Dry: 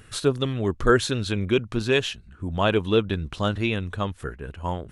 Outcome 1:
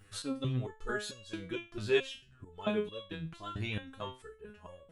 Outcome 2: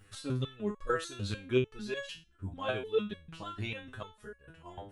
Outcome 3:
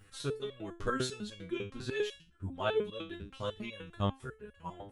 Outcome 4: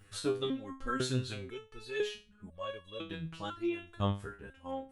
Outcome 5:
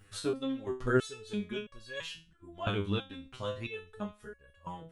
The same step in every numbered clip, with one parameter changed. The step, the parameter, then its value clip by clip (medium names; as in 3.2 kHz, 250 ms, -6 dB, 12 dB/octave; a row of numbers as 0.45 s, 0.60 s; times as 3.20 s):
resonator arpeggio, rate: 4.5 Hz, 6.7 Hz, 10 Hz, 2 Hz, 3 Hz